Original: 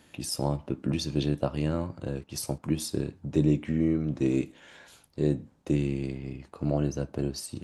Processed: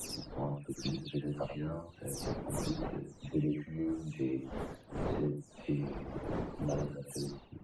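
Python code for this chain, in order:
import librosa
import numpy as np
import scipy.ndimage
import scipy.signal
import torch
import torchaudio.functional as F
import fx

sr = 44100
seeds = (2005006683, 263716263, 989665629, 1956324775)

p1 = fx.spec_delay(x, sr, highs='early', ms=297)
p2 = fx.dmg_wind(p1, sr, seeds[0], corner_hz=430.0, level_db=-34.0)
p3 = fx.dereverb_blind(p2, sr, rt60_s=1.3)
p4 = p3 + fx.echo_single(p3, sr, ms=90, db=-8.0, dry=0)
y = p4 * 10.0 ** (-7.5 / 20.0)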